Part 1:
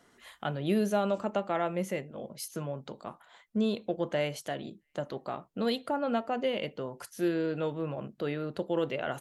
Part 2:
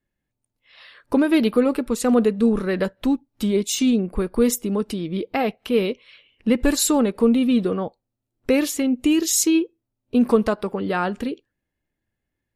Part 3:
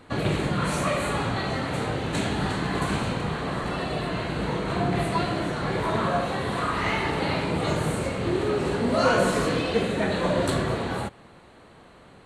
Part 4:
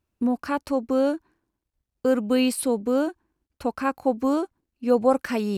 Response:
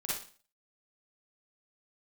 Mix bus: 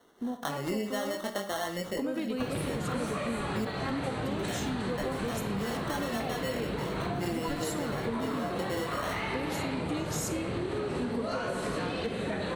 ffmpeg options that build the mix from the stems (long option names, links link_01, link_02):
-filter_complex "[0:a]highpass=180,acrusher=samples=18:mix=1:aa=0.000001,flanger=delay=18:depth=5.5:speed=0.54,volume=3dB,asplit=3[link_01][link_02][link_03];[link_01]atrim=end=3.65,asetpts=PTS-STARTPTS,afade=type=out:start_time=3.646:duration=0.004:curve=hsin[link_04];[link_02]atrim=start=3.65:end=4.39,asetpts=PTS-STARTPTS,volume=0[link_05];[link_03]atrim=start=4.39,asetpts=PTS-STARTPTS,afade=type=in:duration=0.004:curve=hsin[link_06];[link_04][link_05][link_06]concat=n=3:v=0:a=1,asplit=2[link_07][link_08];[link_08]volume=-12.5dB[link_09];[1:a]adelay=850,volume=-13dB,asplit=2[link_10][link_11];[link_11]volume=-14dB[link_12];[2:a]acompressor=threshold=-31dB:ratio=2,bandreject=frequency=6900:width=13,adelay=2300,volume=1.5dB[link_13];[3:a]volume=-12dB,asplit=2[link_14][link_15];[link_15]volume=-8dB[link_16];[4:a]atrim=start_sample=2205[link_17];[link_09][link_12][link_16]amix=inputs=3:normalize=0[link_18];[link_18][link_17]afir=irnorm=-1:irlink=0[link_19];[link_07][link_10][link_13][link_14][link_19]amix=inputs=5:normalize=0,acompressor=threshold=-29dB:ratio=6"